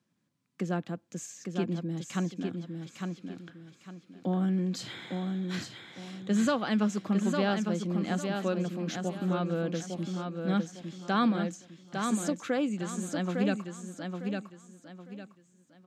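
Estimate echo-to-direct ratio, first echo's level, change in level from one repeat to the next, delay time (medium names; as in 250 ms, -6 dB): -4.5 dB, -5.0 dB, -10.5 dB, 855 ms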